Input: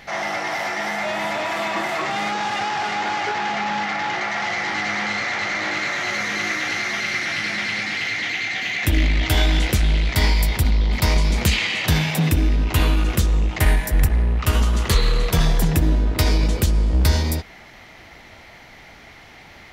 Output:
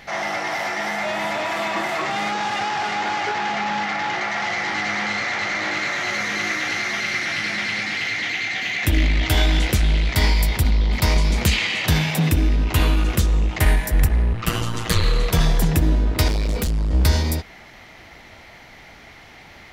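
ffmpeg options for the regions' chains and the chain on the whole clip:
ffmpeg -i in.wav -filter_complex "[0:a]asettb=1/sr,asplit=3[link_01][link_02][link_03];[link_01]atrim=end=14.334[link_04];[link_02]atrim=start=14.33:end=15.04,asetpts=PTS-STARTPTS,afade=type=in:duration=0.004:curve=qsin,afade=type=out:start_time=0.706:duration=0.004:curve=qsin,aecho=1:1:7.1:0.89,atrim=end_sample=31311,aeval=exprs='val(0)*sin(2*PI*57*n/s)':channel_layout=same[link_05];[link_03]atrim=start=15.036[link_06];[link_04][link_05]acrossfade=duration=0.004:curve1=hsin:curve2=qsin[link_07];[link_07][link_06]acrossfade=duration=0.004:curve1=qsin:curve2=hsin,asettb=1/sr,asplit=3[link_08][link_09][link_10];[link_08]atrim=end=16.284[link_11];[link_09]atrim=start=16.28:end=16.91,asetpts=PTS-STARTPTS,afade=type=in:duration=0.004:curve=qsin,afade=type=out:start_time=0.626:duration=0.004:curve=qsin,aecho=1:1:4.3:0.63,atrim=end_sample=27783,volume=18.5dB,asoftclip=hard,volume=-18.5dB[link_12];[link_10]atrim=start=16.906[link_13];[link_11][link_12]acrossfade=duration=0.004:curve1=hsin:curve2=qsin[link_14];[link_14][link_13]acrossfade=duration=0.004:curve1=qsin:curve2=hsin" out.wav

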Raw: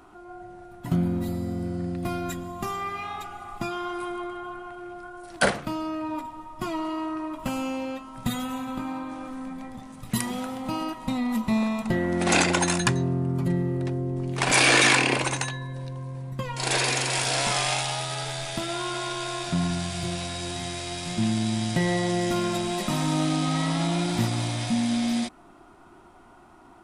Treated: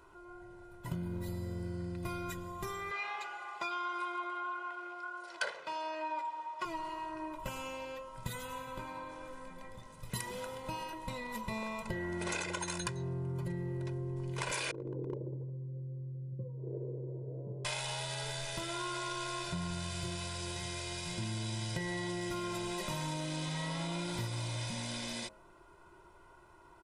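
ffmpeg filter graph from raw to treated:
ffmpeg -i in.wav -filter_complex "[0:a]asettb=1/sr,asplit=3[link_01][link_02][link_03];[link_01]atrim=end=2.914[link_04];[link_02]atrim=start=2.91:end=6.65,asetpts=PTS-STARTPTS,afade=type=in:duration=0.004:curve=qsin,afade=type=out:start_time=3.736:duration=0.004:curve=qsin,highpass=620,lowpass=5400,acontrast=62[link_05];[link_03]atrim=start=6.646[link_06];[link_04][link_05]acrossfade=duration=0.004:curve1=hsin:curve2=qsin[link_07];[link_07][link_06]acrossfade=duration=0.004:curve1=qsin:curve2=hsin,asettb=1/sr,asplit=3[link_08][link_09][link_10];[link_08]atrim=end=14.714[link_11];[link_09]atrim=start=14.71:end=17.65,asetpts=PTS-STARTPTS,afade=type=in:duration=0.004:curve=qsin,afade=type=out:start_time=2.936:duration=0.004:curve=qsin,asuperpass=centerf=210:order=8:qfactor=0.62,volume=20dB,asoftclip=hard,volume=-20dB[link_12];[link_10]atrim=start=17.646[link_13];[link_11][link_12]acrossfade=duration=0.004:curve1=hsin:curve2=qsin[link_14];[link_14][link_13]acrossfade=duration=0.004:curve1=qsin:curve2=hsin,aecho=1:1:2:0.82,bandreject=frequency=105.5:width_type=h:width=4,bandreject=frequency=211:width_type=h:width=4,bandreject=frequency=316.5:width_type=h:width=4,bandreject=frequency=422:width_type=h:width=4,bandreject=frequency=527.5:width_type=h:width=4,bandreject=frequency=633:width_type=h:width=4,bandreject=frequency=738.5:width_type=h:width=4,bandreject=frequency=844:width_type=h:width=4,acompressor=threshold=-25dB:ratio=10,volume=-8.5dB" out.wav

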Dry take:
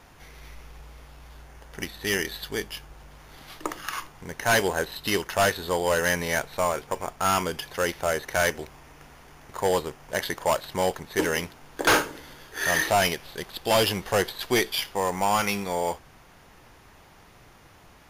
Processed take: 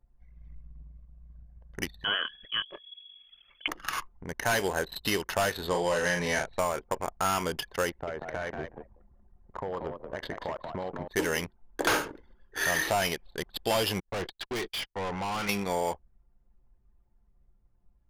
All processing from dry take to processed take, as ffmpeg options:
ffmpeg -i in.wav -filter_complex "[0:a]asettb=1/sr,asplit=3[link_01][link_02][link_03];[link_01]atrim=end=2.044[link_04];[link_02]atrim=start=2.04:end=3.68,asetpts=PTS-STARTPTS,afade=type=in:duration=0.004:curve=qsin,afade=type=out:start_time=1.636:duration=0.004:curve=qsin,bandreject=frequency=60:width_type=h:width=6,bandreject=frequency=120:width_type=h:width=6,bandreject=frequency=180:width_type=h:width=6,bandreject=frequency=240:width_type=h:width=6,bandreject=frequency=300:width_type=h:width=6,acompressor=mode=upward:threshold=-38dB:ratio=2.5:attack=3.2:release=140:knee=2.83:detection=peak,lowpass=frequency=2900:width_type=q:width=0.5098,lowpass=frequency=2900:width_type=q:width=0.6013,lowpass=frequency=2900:width_type=q:width=0.9,lowpass=frequency=2900:width_type=q:width=2.563,afreqshift=-3400[link_05];[link_03]atrim=start=3.676[link_06];[link_04][link_05]acrossfade=duration=0.004:curve1=hsin:curve2=qsin[link_07];[link_07][link_06]acrossfade=duration=0.004:curve1=qsin:curve2=hsin,asettb=1/sr,asplit=3[link_08][link_09][link_10];[link_08]atrim=end=5.684[link_11];[link_09]atrim=start=5.68:end=6.59,asetpts=PTS-STARTPTS,afade=type=in:duration=0.004:curve=qsin,afade=type=out:start_time=0.906:duration=0.004:curve=qsin,lowpass=8300,bandreject=frequency=1400:width=18,asplit=2[link_12][link_13];[link_13]adelay=40,volume=-4.5dB[link_14];[link_12][link_14]amix=inputs=2:normalize=0,atrim=end_sample=40131[link_15];[link_10]atrim=start=6.586[link_16];[link_11][link_15]acrossfade=duration=0.004:curve1=hsin:curve2=qsin[link_17];[link_17][link_16]acrossfade=duration=0.004:curve1=qsin:curve2=hsin,asettb=1/sr,asplit=3[link_18][link_19][link_20];[link_18]atrim=end=7.894[link_21];[link_19]atrim=start=7.89:end=11.08,asetpts=PTS-STARTPTS,afade=type=in:duration=0.004:curve=qsin,afade=type=out:start_time=3.186:duration=0.004:curve=qsin,lowpass=frequency=1800:poles=1,acompressor=threshold=-30dB:ratio=12:attack=3.2:release=140:knee=1:detection=peak,asplit=5[link_22][link_23][link_24][link_25][link_26];[link_23]adelay=185,afreqshift=61,volume=-5dB[link_27];[link_24]adelay=370,afreqshift=122,volume=-14.6dB[link_28];[link_25]adelay=555,afreqshift=183,volume=-24.3dB[link_29];[link_26]adelay=740,afreqshift=244,volume=-33.9dB[link_30];[link_22][link_27][link_28][link_29][link_30]amix=inputs=5:normalize=0,atrim=end_sample=140679[link_31];[link_20]atrim=start=11.076[link_32];[link_21][link_31]acrossfade=duration=0.004:curve1=hsin:curve2=qsin[link_33];[link_33][link_32]acrossfade=duration=0.004:curve1=qsin:curve2=hsin,asettb=1/sr,asplit=3[link_34][link_35][link_36];[link_34]atrim=end=14.004[link_37];[link_35]atrim=start=14:end=15.49,asetpts=PTS-STARTPTS,afade=type=in:duration=0.004:curve=qsin,afade=type=out:start_time=1.486:duration=0.004:curve=qsin,agate=range=-29dB:threshold=-35dB:ratio=16:release=100:detection=peak,lowpass=5400,volume=30.5dB,asoftclip=hard,volume=-30.5dB[link_38];[link_36]atrim=start=15.486[link_39];[link_37][link_38]acrossfade=duration=0.004:curve1=hsin:curve2=qsin[link_40];[link_40][link_39]acrossfade=duration=0.004:curve1=qsin:curve2=hsin,anlmdn=1.58,acompressor=threshold=-24dB:ratio=6" out.wav

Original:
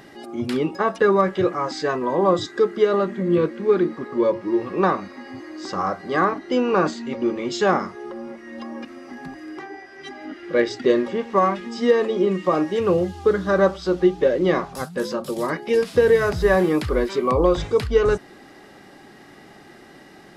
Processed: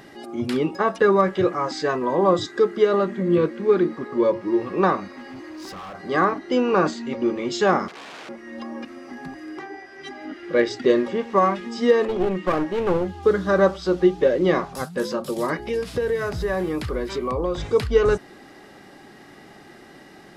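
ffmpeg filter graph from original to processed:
ffmpeg -i in.wav -filter_complex "[0:a]asettb=1/sr,asplit=3[link_01][link_02][link_03];[link_01]atrim=end=5.184[link_04];[link_02]atrim=start=5.18:end=5.95,asetpts=PTS-STARTPTS,afade=type=in:duration=0.004:curve=qsin,afade=type=out:start_time=0.766:duration=0.004:curve=qsin,acompressor=threshold=-28dB:ratio=5:attack=3.2:release=140:knee=1:detection=peak,asoftclip=type=hard:threshold=-34dB[link_05];[link_03]atrim=start=5.946[link_06];[link_04][link_05]acrossfade=duration=0.004:curve1=hsin:curve2=qsin[link_07];[link_07][link_06]acrossfade=duration=0.004:curve1=qsin:curve2=hsin,asettb=1/sr,asplit=3[link_08][link_09][link_10];[link_08]atrim=end=7.884[link_11];[link_09]atrim=start=7.88:end=8.29,asetpts=PTS-STARTPTS,afade=type=in:duration=0.004:curve=qsin,afade=type=out:start_time=0.406:duration=0.004:curve=qsin,aeval=exprs='(mod(47.3*val(0)+1,2)-1)/47.3':channel_layout=same,highpass=250,lowpass=5000[link_12];[link_10]atrim=start=8.286[link_13];[link_11][link_12]acrossfade=duration=0.004:curve1=hsin:curve2=qsin[link_14];[link_14][link_13]acrossfade=duration=0.004:curve1=qsin:curve2=hsin,asettb=1/sr,asplit=3[link_15][link_16][link_17];[link_15]atrim=end=12.054[link_18];[link_16]atrim=start=12.05:end=13.23,asetpts=PTS-STARTPTS,afade=type=in:duration=0.004:curve=qsin,afade=type=out:start_time=1.176:duration=0.004:curve=qsin,bass=frequency=250:gain=-1,treble=frequency=4000:gain=-9,aeval=exprs='clip(val(0),-1,0.0562)':channel_layout=same[link_19];[link_17]atrim=start=13.226[link_20];[link_18][link_19]acrossfade=duration=0.004:curve1=hsin:curve2=qsin[link_21];[link_21][link_20]acrossfade=duration=0.004:curve1=qsin:curve2=hsin,asettb=1/sr,asplit=3[link_22][link_23][link_24];[link_22]atrim=end=15.594[link_25];[link_23]atrim=start=15.59:end=17.7,asetpts=PTS-STARTPTS,afade=type=in:duration=0.004:curve=qsin,afade=type=out:start_time=2.106:duration=0.004:curve=qsin,acompressor=threshold=-26dB:ratio=2:attack=3.2:release=140:knee=1:detection=peak,aeval=exprs='val(0)+0.00891*(sin(2*PI*60*n/s)+sin(2*PI*2*60*n/s)/2+sin(2*PI*3*60*n/s)/3+sin(2*PI*4*60*n/s)/4+sin(2*PI*5*60*n/s)/5)':channel_layout=same[link_26];[link_24]atrim=start=17.696[link_27];[link_25][link_26]acrossfade=duration=0.004:curve1=hsin:curve2=qsin[link_28];[link_28][link_27]acrossfade=duration=0.004:curve1=qsin:curve2=hsin" out.wav

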